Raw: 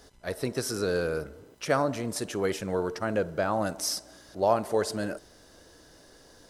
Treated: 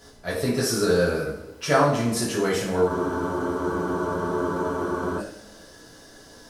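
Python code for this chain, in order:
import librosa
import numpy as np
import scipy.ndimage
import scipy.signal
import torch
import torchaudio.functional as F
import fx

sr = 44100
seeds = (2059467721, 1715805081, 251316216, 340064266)

y = fx.rev_double_slope(x, sr, seeds[0], early_s=0.55, late_s=1.6, knee_db=-18, drr_db=-6.0)
y = fx.spec_freeze(y, sr, seeds[1], at_s=2.9, hold_s=2.28)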